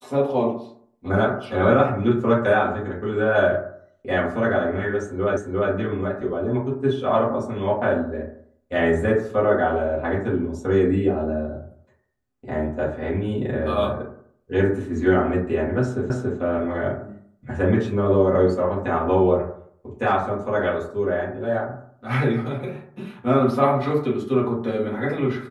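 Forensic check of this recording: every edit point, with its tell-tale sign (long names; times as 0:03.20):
0:05.37: the same again, the last 0.35 s
0:16.10: the same again, the last 0.28 s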